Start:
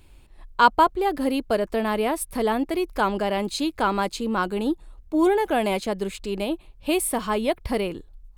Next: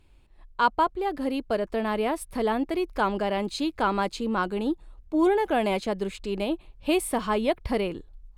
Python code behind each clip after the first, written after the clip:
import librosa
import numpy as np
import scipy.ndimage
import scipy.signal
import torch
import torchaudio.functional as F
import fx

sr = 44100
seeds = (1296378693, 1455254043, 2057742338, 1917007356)

y = fx.high_shelf(x, sr, hz=8800.0, db=-11.5)
y = fx.rider(y, sr, range_db=4, speed_s=2.0)
y = y * 10.0 ** (-3.0 / 20.0)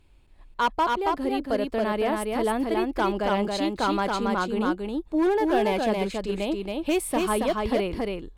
y = np.clip(10.0 ** (17.5 / 20.0) * x, -1.0, 1.0) / 10.0 ** (17.5 / 20.0)
y = y + 10.0 ** (-3.0 / 20.0) * np.pad(y, (int(276 * sr / 1000.0), 0))[:len(y)]